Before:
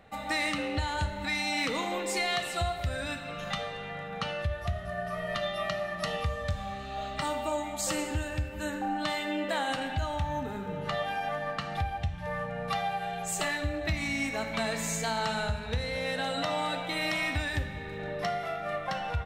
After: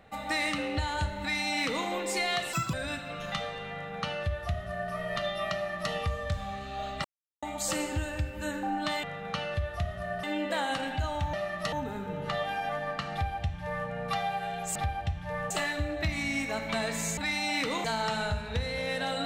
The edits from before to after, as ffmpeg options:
ffmpeg -i in.wav -filter_complex "[0:a]asplit=13[link_01][link_02][link_03][link_04][link_05][link_06][link_07][link_08][link_09][link_10][link_11][link_12][link_13];[link_01]atrim=end=2.534[link_14];[link_02]atrim=start=2.53:end=2.92,asetpts=PTS-STARTPTS,asetrate=84231,aresample=44100[link_15];[link_03]atrim=start=2.916:end=7.23,asetpts=PTS-STARTPTS,afade=type=out:start_time=4.31:duration=0.004:curve=hsin[link_16];[link_04]atrim=start=7.23:end=7.61,asetpts=PTS-STARTPTS,volume=0[link_17];[link_05]atrim=start=7.61:end=9.222,asetpts=PTS-STARTPTS,afade=type=in:duration=0.004:curve=hsin[link_18];[link_06]atrim=start=3.908:end=5.112[link_19];[link_07]atrim=start=9.218:end=10.322[link_20];[link_08]atrim=start=5.718:end=6.112[link_21];[link_09]atrim=start=10.318:end=13.352[link_22];[link_10]atrim=start=11.718:end=12.472[link_23];[link_11]atrim=start=13.348:end=15.022[link_24];[link_12]atrim=start=1.208:end=1.882[link_25];[link_13]atrim=start=15.018[link_26];[link_14][link_15]acrossfade=duration=0.004:curve1=hsin:curve2=hsin[link_27];[link_16][link_17][link_18]concat=n=3:v=0:a=1[link_28];[link_27][link_28]acrossfade=duration=0.004:curve1=hsin:curve2=hsin[link_29];[link_29][link_19]acrossfade=duration=0.004:curve1=hsin:curve2=hsin[link_30];[link_30][link_20]acrossfade=duration=0.004:curve1=hsin:curve2=hsin[link_31];[link_31][link_21]acrossfade=duration=0.004:curve1=hsin:curve2=hsin[link_32];[link_32][link_22]acrossfade=duration=0.004:curve1=hsin:curve2=hsin[link_33];[link_33][link_23]acrossfade=duration=0.004:curve1=hsin:curve2=hsin[link_34];[link_34][link_24]acrossfade=duration=0.004:curve1=hsin:curve2=hsin[link_35];[link_35][link_25]acrossfade=duration=0.004:curve1=hsin:curve2=hsin[link_36];[link_36][link_26]acrossfade=duration=0.004:curve1=hsin:curve2=hsin" out.wav

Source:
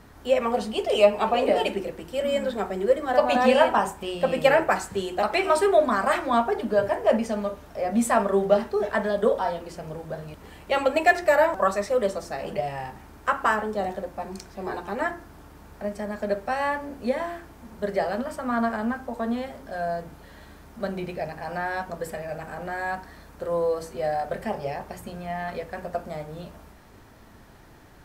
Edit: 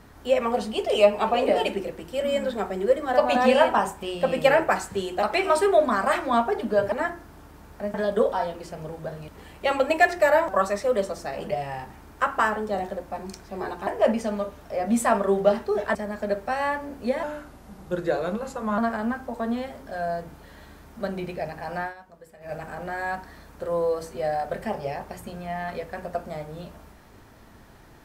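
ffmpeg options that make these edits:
ffmpeg -i in.wav -filter_complex "[0:a]asplit=9[link_01][link_02][link_03][link_04][link_05][link_06][link_07][link_08][link_09];[link_01]atrim=end=6.922[link_10];[link_02]atrim=start=14.928:end=15.952[link_11];[link_03]atrim=start=8.998:end=14.932[link_12];[link_04]atrim=start=6.918:end=9.002[link_13];[link_05]atrim=start=15.948:end=17.234[link_14];[link_06]atrim=start=17.23:end=18.58,asetpts=PTS-STARTPTS,asetrate=38367,aresample=44100,atrim=end_sample=68431,asetpts=PTS-STARTPTS[link_15];[link_07]atrim=start=18.576:end=21.74,asetpts=PTS-STARTPTS,afade=type=out:start_time=3.044:duration=0.12:silence=0.149624[link_16];[link_08]atrim=start=21.74:end=22.2,asetpts=PTS-STARTPTS,volume=-16.5dB[link_17];[link_09]atrim=start=22.2,asetpts=PTS-STARTPTS,afade=type=in:duration=0.12:silence=0.149624[link_18];[link_10][link_11]acrossfade=duration=0.004:curve1=hsin:curve2=hsin[link_19];[link_19][link_12]acrossfade=duration=0.004:curve1=hsin:curve2=hsin[link_20];[link_20][link_13]acrossfade=duration=0.004:curve1=hsin:curve2=hsin[link_21];[link_21][link_14]acrossfade=duration=0.004:curve1=hsin:curve2=hsin[link_22];[link_22][link_15]acrossfade=duration=0.004:curve1=hsin:curve2=hsin[link_23];[link_16][link_17][link_18]concat=n=3:v=0:a=1[link_24];[link_23][link_24]acrossfade=duration=0.004:curve1=hsin:curve2=hsin" out.wav

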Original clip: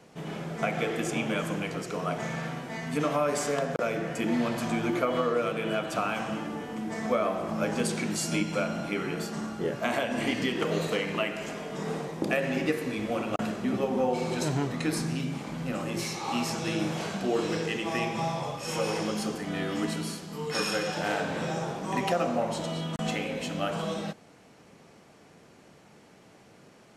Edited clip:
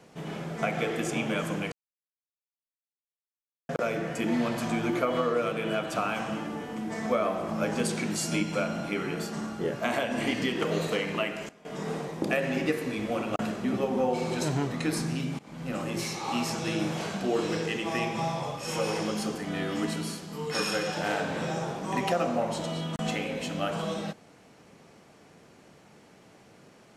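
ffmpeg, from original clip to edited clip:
ffmpeg -i in.wav -filter_complex "[0:a]asplit=6[link_01][link_02][link_03][link_04][link_05][link_06];[link_01]atrim=end=1.72,asetpts=PTS-STARTPTS,afade=type=out:start_time=1.716:duration=0.004:curve=hsin[link_07];[link_02]atrim=start=1.72:end=3.69,asetpts=PTS-STARTPTS,volume=0[link_08];[link_03]atrim=start=3.69:end=11.49,asetpts=PTS-STARTPTS,afade=type=in:duration=0.004:curve=hsin,afade=type=out:start_time=7.34:duration=0.46:curve=log:silence=0.11885[link_09];[link_04]atrim=start=11.49:end=11.65,asetpts=PTS-STARTPTS,volume=-18.5dB[link_10];[link_05]atrim=start=11.65:end=15.39,asetpts=PTS-STARTPTS,afade=type=in:duration=0.46:curve=log:silence=0.11885,afade=type=out:start_time=3.736:duration=0.004:curve=hsin:silence=0.0944061[link_11];[link_06]atrim=start=15.39,asetpts=PTS-STARTPTS,afade=type=in:duration=0.37:silence=0.0944061[link_12];[link_07][link_08][link_09][link_10][link_11][link_12]concat=n=6:v=0:a=1" out.wav

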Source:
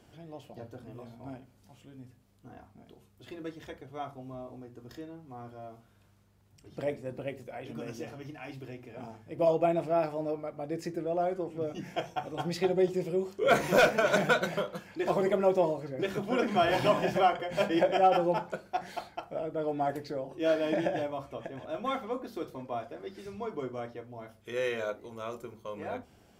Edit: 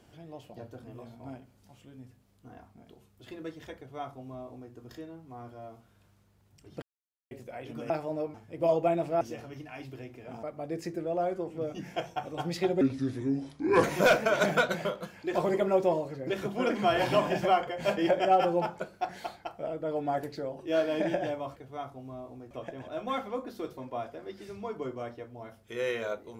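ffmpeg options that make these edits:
ffmpeg -i in.wav -filter_complex "[0:a]asplit=11[link_01][link_02][link_03][link_04][link_05][link_06][link_07][link_08][link_09][link_10][link_11];[link_01]atrim=end=6.82,asetpts=PTS-STARTPTS,afade=type=out:start_time=6.816:duration=0.004:curve=hsin[link_12];[link_02]atrim=start=6.82:end=7.31,asetpts=PTS-STARTPTS,volume=0[link_13];[link_03]atrim=start=7.31:end=7.902,asetpts=PTS-STARTPTS,afade=type=in:duration=0.004:curve=hsin[link_14];[link_04]atrim=start=9.988:end=10.432[link_15];[link_05]atrim=start=9.118:end=9.992[link_16];[link_06]atrim=start=7.898:end=9.122[link_17];[link_07]atrim=start=10.428:end=12.814[link_18];[link_08]atrim=start=12.81:end=13.56,asetpts=PTS-STARTPTS,asetrate=32193,aresample=44100,atrim=end_sample=45308,asetpts=PTS-STARTPTS[link_19];[link_09]atrim=start=13.556:end=21.282[link_20];[link_10]atrim=start=3.768:end=4.722[link_21];[link_11]atrim=start=21.278[link_22];[link_12][link_13][link_14]concat=n=3:v=0:a=1[link_23];[link_23][link_15]acrossfade=duration=0.004:curve1=hsin:curve2=hsin[link_24];[link_24][link_16]acrossfade=duration=0.004:curve1=hsin:curve2=hsin[link_25];[link_25][link_17]acrossfade=duration=0.004:curve1=hsin:curve2=hsin[link_26];[link_26][link_18]acrossfade=duration=0.004:curve1=hsin:curve2=hsin[link_27];[link_27][link_19]acrossfade=duration=0.004:curve1=hsin:curve2=hsin[link_28];[link_28][link_20]acrossfade=duration=0.004:curve1=hsin:curve2=hsin[link_29];[link_29][link_21]acrossfade=duration=0.004:curve1=hsin:curve2=hsin[link_30];[link_30][link_22]acrossfade=duration=0.004:curve1=hsin:curve2=hsin" out.wav

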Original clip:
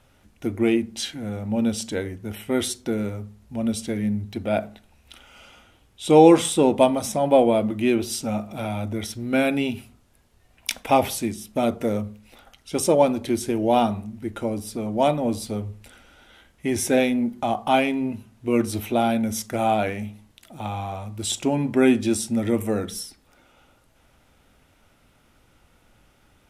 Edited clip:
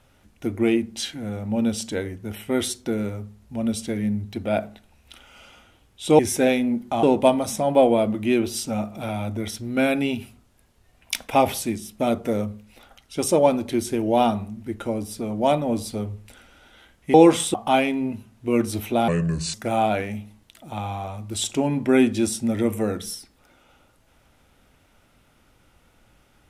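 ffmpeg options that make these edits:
ffmpeg -i in.wav -filter_complex "[0:a]asplit=7[link_01][link_02][link_03][link_04][link_05][link_06][link_07];[link_01]atrim=end=6.192[link_08];[link_02]atrim=start=16.698:end=17.542[link_09];[link_03]atrim=start=6.588:end=16.702[link_10];[link_04]atrim=start=6.188:end=6.592[link_11];[link_05]atrim=start=17.538:end=19.084[link_12];[link_06]atrim=start=19.08:end=19.42,asetpts=PTS-STARTPTS,asetrate=32634,aresample=44100,atrim=end_sample=20262,asetpts=PTS-STARTPTS[link_13];[link_07]atrim=start=19.416[link_14];[link_08][link_09]acrossfade=duration=0.004:curve1=hsin:curve2=hsin[link_15];[link_15][link_10]acrossfade=duration=0.004:curve1=hsin:curve2=hsin[link_16];[link_16][link_11]acrossfade=duration=0.004:curve1=hsin:curve2=hsin[link_17];[link_17][link_12]acrossfade=duration=0.004:curve1=hsin:curve2=hsin[link_18];[link_18][link_13]acrossfade=duration=0.004:curve1=hsin:curve2=hsin[link_19];[link_19][link_14]acrossfade=duration=0.004:curve1=hsin:curve2=hsin" out.wav

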